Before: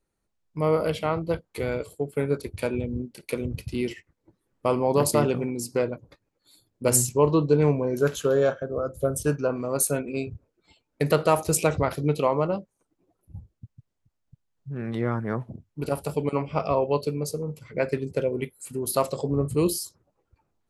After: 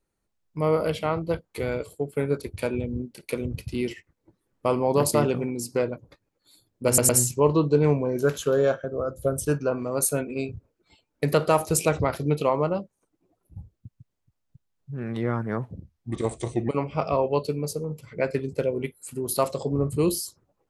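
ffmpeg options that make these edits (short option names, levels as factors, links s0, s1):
-filter_complex "[0:a]asplit=5[s0][s1][s2][s3][s4];[s0]atrim=end=6.982[s5];[s1]atrim=start=6.868:end=6.982[s6];[s2]atrim=start=6.868:end=15.484[s7];[s3]atrim=start=15.48:end=16.27,asetpts=PTS-STARTPTS,asetrate=35280,aresample=44100[s8];[s4]atrim=start=16.266[s9];[s5][s6]acrossfade=d=0.004:c1=hsin:c2=hsin[s10];[s10][s7]acrossfade=d=0.004:c1=hsin:c2=hsin[s11];[s11][s8]acrossfade=d=0.004:c1=hsin:c2=hsin[s12];[s12][s9]acrossfade=d=0.004:c1=hsin:c2=hsin"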